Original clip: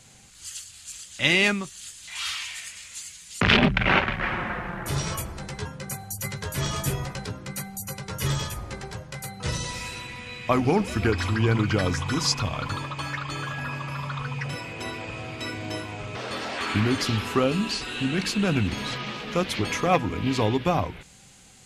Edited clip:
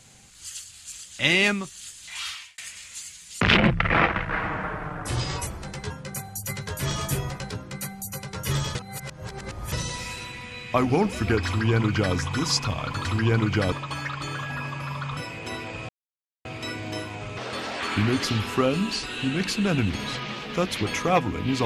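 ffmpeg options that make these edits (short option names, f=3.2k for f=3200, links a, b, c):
-filter_complex "[0:a]asplit=10[a][b][c][d][e][f][g][h][i][j];[a]atrim=end=2.58,asetpts=PTS-STARTPTS,afade=t=out:st=2.15:d=0.43[k];[b]atrim=start=2.58:end=3.554,asetpts=PTS-STARTPTS,afade=t=in:d=0.004:c=hsin[l];[c]atrim=start=3.55:end=5.22,asetpts=PTS-STARTPTS,asetrate=38367,aresample=44100[m];[d]atrim=start=5.216:end=8.502[n];[e]atrim=start=8.498:end=9.472,asetpts=PTS-STARTPTS,areverse[o];[f]atrim=start=9.468:end=12.802[p];[g]atrim=start=11.218:end=11.892[q];[h]atrim=start=12.798:end=14.252[r];[i]atrim=start=14.508:end=15.23,asetpts=PTS-STARTPTS,afade=t=out:st=0.718:d=0.004:c=hsin,apad=pad_dur=0.56[s];[j]atrim=start=15.23,asetpts=PTS-STARTPTS,afade=t=in:d=0.004:c=hsin[t];[k][l]concat=n=2:v=0:a=1[u];[u][m]acrossfade=d=0.004:c1=hsin:c2=hsin[v];[v][n]acrossfade=d=0.004:c1=hsin:c2=hsin[w];[w][o]acrossfade=d=0.004:c1=hsin:c2=hsin[x];[x][p]acrossfade=d=0.004:c1=hsin:c2=hsin[y];[y][q]acrossfade=d=0.004:c1=hsin:c2=hsin[z];[z][r]acrossfade=d=0.004:c1=hsin:c2=hsin[aa];[s][t]concat=n=2:v=0:a=1[ab];[aa][ab]acrossfade=d=0.004:c1=hsin:c2=hsin"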